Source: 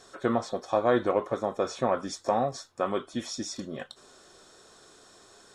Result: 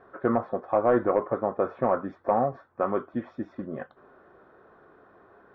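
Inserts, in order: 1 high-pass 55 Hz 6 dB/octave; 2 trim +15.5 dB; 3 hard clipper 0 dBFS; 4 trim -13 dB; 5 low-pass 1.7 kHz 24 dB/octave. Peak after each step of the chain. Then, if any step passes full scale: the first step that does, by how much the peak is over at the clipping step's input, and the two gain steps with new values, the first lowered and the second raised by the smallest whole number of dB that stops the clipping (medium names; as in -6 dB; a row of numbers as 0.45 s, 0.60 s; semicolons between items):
-10.5 dBFS, +5.0 dBFS, 0.0 dBFS, -13.0 dBFS, -12.0 dBFS; step 2, 5.0 dB; step 2 +10.5 dB, step 4 -8 dB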